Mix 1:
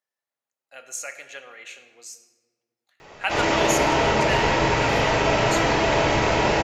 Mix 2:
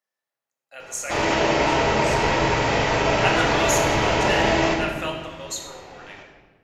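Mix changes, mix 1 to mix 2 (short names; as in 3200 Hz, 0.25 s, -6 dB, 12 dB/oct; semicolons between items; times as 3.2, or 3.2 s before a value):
speech: send +8.5 dB; background: entry -2.20 s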